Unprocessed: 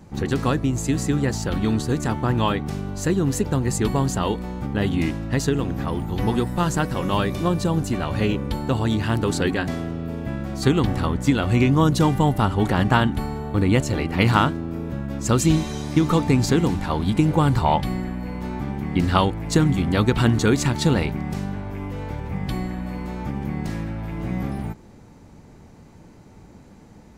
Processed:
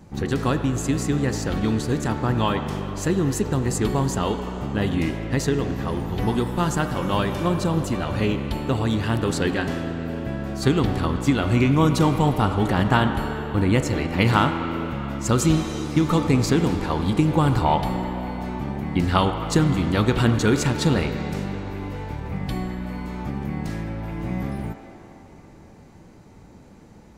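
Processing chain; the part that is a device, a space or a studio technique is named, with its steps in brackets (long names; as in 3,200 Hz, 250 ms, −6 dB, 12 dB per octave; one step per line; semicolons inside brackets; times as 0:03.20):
filtered reverb send (on a send: high-pass filter 310 Hz 24 dB per octave + low-pass filter 3,800 Hz 12 dB per octave + convolution reverb RT60 3.9 s, pre-delay 25 ms, DRR 6.5 dB)
on the sum: level −1 dB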